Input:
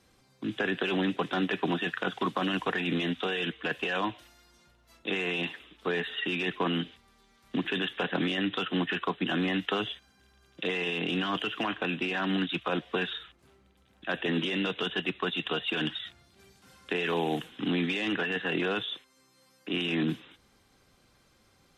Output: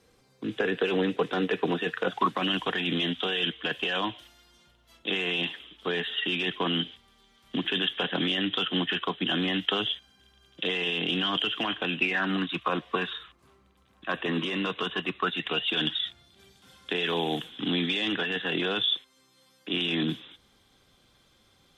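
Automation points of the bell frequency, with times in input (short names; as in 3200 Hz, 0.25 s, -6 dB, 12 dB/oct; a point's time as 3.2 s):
bell +12.5 dB 0.22 oct
2.04 s 460 Hz
2.48 s 3200 Hz
11.93 s 3200 Hz
12.39 s 1100 Hz
15.17 s 1100 Hz
15.69 s 3400 Hz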